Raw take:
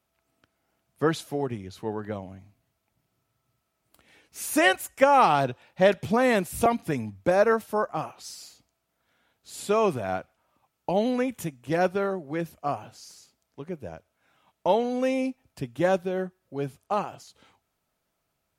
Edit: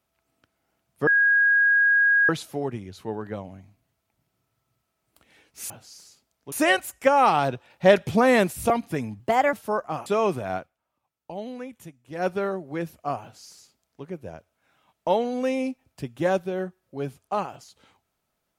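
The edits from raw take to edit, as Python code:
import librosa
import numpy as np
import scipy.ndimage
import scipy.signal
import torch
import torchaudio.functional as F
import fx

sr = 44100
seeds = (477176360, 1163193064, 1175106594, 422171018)

y = fx.edit(x, sr, fx.insert_tone(at_s=1.07, length_s=1.22, hz=1640.0, db=-15.5),
    fx.clip_gain(start_s=5.66, length_s=0.83, db=3.5),
    fx.speed_span(start_s=7.16, length_s=0.42, speed=1.27),
    fx.cut(start_s=8.11, length_s=1.54),
    fx.fade_down_up(start_s=10.15, length_s=1.73, db=-10.5, fade_s=0.14),
    fx.duplicate(start_s=12.81, length_s=0.82, to_s=4.48), tone=tone)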